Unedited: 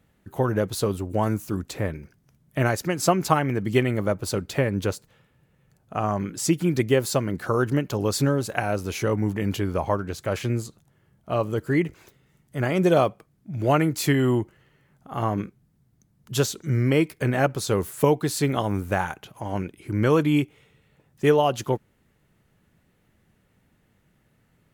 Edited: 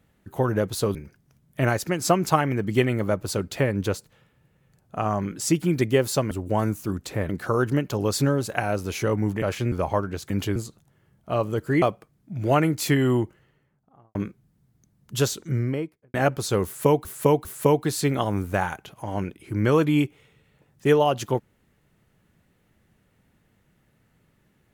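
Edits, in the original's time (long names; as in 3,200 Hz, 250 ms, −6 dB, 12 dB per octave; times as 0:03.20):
0:00.95–0:01.93: move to 0:07.29
0:09.42–0:09.68: swap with 0:10.26–0:10.56
0:11.82–0:13.00: remove
0:14.35–0:15.33: fade out and dull
0:16.51–0:17.32: fade out and dull
0:17.83–0:18.23: repeat, 3 plays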